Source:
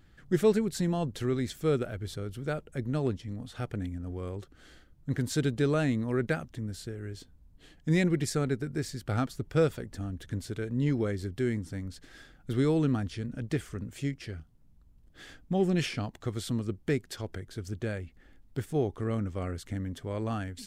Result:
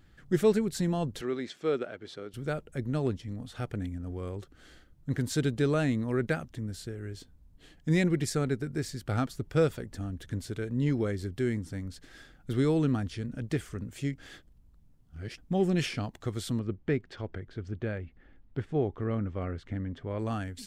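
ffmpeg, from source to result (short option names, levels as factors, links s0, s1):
-filter_complex "[0:a]asettb=1/sr,asplit=3[s0][s1][s2];[s0]atrim=end=1.214[s3];[s1]atrim=start=1.21:end=2.34,asetpts=PTS-STARTPTS,afade=t=in:d=0.004:c=qsin,afade=t=out:st=1.126:d=0.004:c=qsin,highpass=300,lowpass=4500[s4];[s2]atrim=start=2.336[s5];[s3][s4]acrossfade=d=0.004:c1=hsin:c2=qsin[s6];[s6][s5]acrossfade=d=0.004:c1=qsin:c2=hsin,asettb=1/sr,asplit=3[s7][s8][s9];[s7]atrim=end=16.594[s10];[s8]atrim=start=16.59:end=20.19,asetpts=PTS-STARTPTS,afade=t=in:d=0.004:c=qsin,afade=t=out:st=3.596:d=0.004:c=qsin,lowpass=2800[s11];[s9]atrim=start=20.186[s12];[s10][s11]acrossfade=d=0.004:c1=hsin:c2=qsin[s13];[s13][s12]acrossfade=d=0.004:c1=qsin:c2=hsin,asplit=3[s14][s15][s16];[s14]atrim=end=14.182[s17];[s15]atrim=start=14.178:end=15.382,asetpts=PTS-STARTPTS,areverse[s18];[s16]atrim=start=15.378[s19];[s17][s18]acrossfade=d=0.004:c1=hsin:c2=hsin[s20];[s20][s19]acrossfade=d=0.004:c1=hsin:c2=hsin"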